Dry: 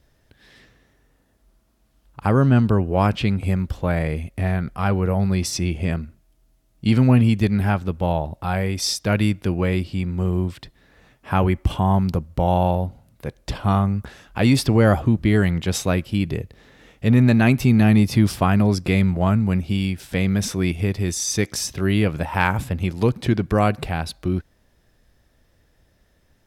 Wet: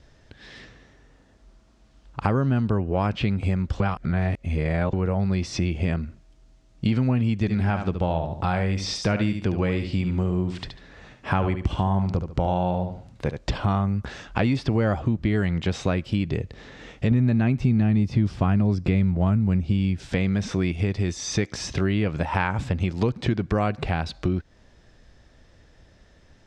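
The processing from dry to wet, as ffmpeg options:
-filter_complex "[0:a]asettb=1/sr,asplit=3[s0][s1][s2];[s0]atrim=end=7.384[s3];[s1]atrim=start=7.38:end=13.38,asetpts=PTS-STARTPTS,afade=t=in:d=0.004:c=qsin,afade=t=out:st=5.996:d=0.004:c=qsin,aecho=1:1:72|144|216:0.355|0.0816|0.0188,atrim=end_sample=264600[s4];[s2]atrim=start=13.376[s5];[s3][s4]acrossfade=d=0.004:c1=hsin:c2=qsin[s6];[s6][s5]acrossfade=d=0.004:c1=qsin:c2=hsin,asettb=1/sr,asplit=3[s7][s8][s9];[s7]atrim=end=17.114[s10];[s8]atrim=start=17.11:end=20.09,asetpts=PTS-STARTPTS,afade=t=in:d=0.004:c=qsin,afade=t=out:st=2.976:d=0.004:c=qsin,lowshelf=f=330:g=8.5[s11];[s9]atrim=start=20.086[s12];[s10][s11]acrossfade=d=0.004:c1=hsin:c2=qsin[s13];[s13][s12]acrossfade=d=0.004:c1=qsin:c2=hsin,asplit=3[s14][s15][s16];[s14]atrim=end=3.802[s17];[s15]atrim=start=3.798:end=4.932,asetpts=PTS-STARTPTS,areverse[s18];[s16]atrim=start=4.928[s19];[s17][s18]acrossfade=d=0.004:c1=hsin:c2=hsin[s20];[s20][s19]acrossfade=d=0.004:c1=hsin:c2=hsin,acrossover=split=3200[s21][s22];[s22]acompressor=threshold=0.0141:ratio=4:attack=1:release=60[s23];[s21][s23]amix=inputs=2:normalize=0,lowpass=f=7200:w=0.5412,lowpass=f=7200:w=1.3066,acompressor=threshold=0.0398:ratio=4,volume=2.11"

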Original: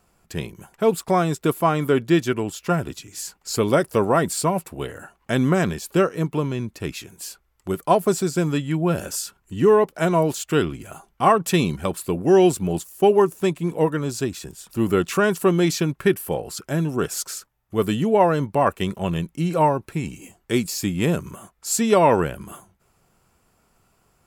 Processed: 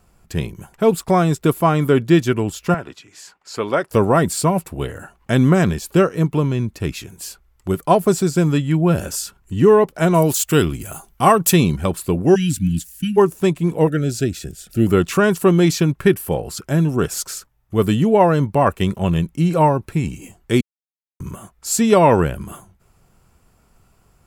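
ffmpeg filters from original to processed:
-filter_complex "[0:a]asettb=1/sr,asplit=3[s0][s1][s2];[s0]atrim=end=2.744[s3];[s1]atrim=start=2.74:end=3.91,asetpts=PTS-STARTPTS,afade=t=in:d=0.004:c=qsin,afade=t=out:st=1.166:d=0.004:c=qsin,bandpass=f=1300:t=q:w=0.61[s4];[s2]atrim=start=3.906[s5];[s3][s4]acrossfade=d=0.004:c1=hsin:c2=qsin[s6];[s6][s5]acrossfade=d=0.004:c1=qsin:c2=hsin,asettb=1/sr,asplit=3[s7][s8][s9];[s7]atrim=end=10.144[s10];[s8]atrim=start=10.14:end=11.54,asetpts=PTS-STARTPTS,afade=t=in:d=0.004:c=qsin,afade=t=out:st=1.396:d=0.004:c=qsin,aemphasis=mode=production:type=50kf[s11];[s9]atrim=start=11.536[s12];[s10][s11]acrossfade=d=0.004:c1=hsin:c2=qsin[s13];[s13][s12]acrossfade=d=0.004:c1=qsin:c2=hsin,asplit=3[s14][s15][s16];[s14]afade=t=out:st=12.34:d=0.02[s17];[s15]asuperstop=centerf=660:order=20:qfactor=0.56,afade=t=in:st=12.34:d=0.02,afade=t=out:st=13.16:d=0.02[s18];[s16]afade=t=in:st=13.16:d=0.02[s19];[s17][s18][s19]amix=inputs=3:normalize=0,asettb=1/sr,asplit=3[s20][s21][s22];[s20]atrim=end=13.874[s23];[s21]atrim=start=13.87:end=14.87,asetpts=PTS-STARTPTS,afade=t=in:d=0.004:c=qsin,afade=t=out:st=0.996:d=0.004:c=qsin,asuperstop=centerf=990:order=8:qfactor=1.8[s24];[s22]atrim=start=14.866[s25];[s23][s24]acrossfade=d=0.004:c1=hsin:c2=qsin[s26];[s26][s25]acrossfade=d=0.004:c1=qsin:c2=hsin,asplit=3[s27][s28][s29];[s27]atrim=end=20.61,asetpts=PTS-STARTPTS,afade=t=out:st=20.606:d=0.004:c=hsin[s30];[s28]atrim=start=20.61:end=21.2,asetpts=PTS-STARTPTS,volume=0[s31];[s29]atrim=start=21.2,asetpts=PTS-STARTPTS,afade=t=in:d=0.004:c=hsin[s32];[s30][s31][s32]concat=n=3:v=0:a=1,lowshelf=f=140:g=10,volume=1.33"

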